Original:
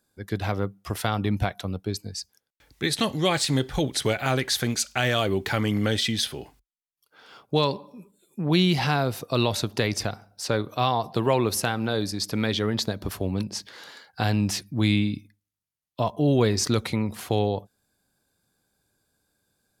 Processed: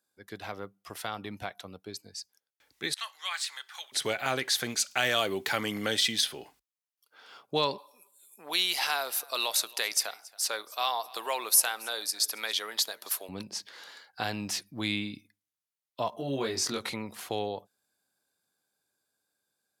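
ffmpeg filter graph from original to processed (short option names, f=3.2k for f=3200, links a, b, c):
-filter_complex "[0:a]asettb=1/sr,asplit=3[a][b][c];[a]atrim=end=2.944[d];[b]atrim=start=2.94:end=3.92,asetpts=PTS-STARTPTS,afade=t=in:d=0.004:c=qsin,afade=t=out:st=0.976:d=0.004:c=qsin,highpass=f=1.1k:w=0.5412,highpass=f=1.1k:w=1.3066,adynamicequalizer=threshold=0.00891:dfrequency=2000:dqfactor=0.7:tfrequency=2000:tqfactor=0.7:attack=5:release=100:ratio=0.375:range=3:mode=cutabove:tftype=highshelf[e];[c]atrim=start=3.916[f];[d][e]acrossfade=d=0.004:c1=hsin:c2=qsin[g];[g][f]acrossfade=d=0.004:c1=qsin:c2=hsin,asettb=1/sr,asplit=3[h][i][j];[h]atrim=end=4.914[k];[i]atrim=start=4.91:end=6.21,asetpts=PTS-STARTPTS,afade=t=in:d=0.004:c=qsin,afade=t=out:st=1.296:d=0.004:c=qsin,highpass=92,highshelf=f=5.6k:g=5[l];[j]atrim=start=6.206[m];[k][l]acrossfade=d=0.004:c1=hsin:c2=qsin[n];[n][m]acrossfade=d=0.004:c1=qsin:c2=hsin,asettb=1/sr,asplit=3[o][p][q];[o]atrim=end=7.784[r];[p]atrim=start=7.78:end=13.29,asetpts=PTS-STARTPTS,afade=t=in:d=0.004:c=qsin,afade=t=out:st=5.506:d=0.004:c=qsin,highpass=670,equalizer=f=12k:t=o:w=1.4:g=14,aecho=1:1:276:0.075,atrim=end_sample=242991[s];[q]atrim=start=13.286[t];[r][s]acrossfade=d=0.004:c1=hsin:c2=qsin[u];[u][t]acrossfade=d=0.004:c1=qsin:c2=hsin,asettb=1/sr,asplit=3[v][w][x];[v]atrim=end=16.104[y];[w]atrim=start=16.1:end=16.94,asetpts=PTS-STARTPTS,afade=t=in:d=0.004:c=qsin,afade=t=out:st=0.836:d=0.004:c=qsin,acompressor=threshold=-26dB:ratio=1.5:attack=3.2:release=140:knee=1:detection=peak,asplit=2[z][aa];[aa]adelay=22,volume=-2.5dB[ab];[z][ab]amix=inputs=2:normalize=0,atrim=end_sample=37044[ac];[x]atrim=start=16.936[ad];[y][ac]acrossfade=d=0.004:c1=hsin:c2=qsin[ae];[ae][ad]acrossfade=d=0.004:c1=qsin:c2=hsin,highpass=f=580:p=1,dynaudnorm=f=810:g=9:m=7dB,volume=-7dB"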